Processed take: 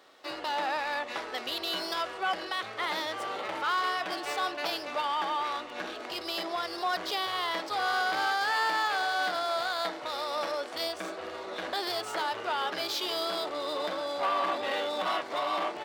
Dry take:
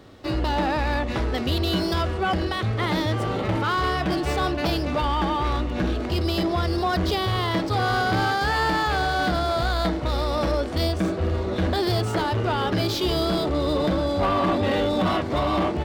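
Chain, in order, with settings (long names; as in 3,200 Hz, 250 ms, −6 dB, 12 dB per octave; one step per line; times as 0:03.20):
high-pass filter 690 Hz 12 dB per octave
level −3.5 dB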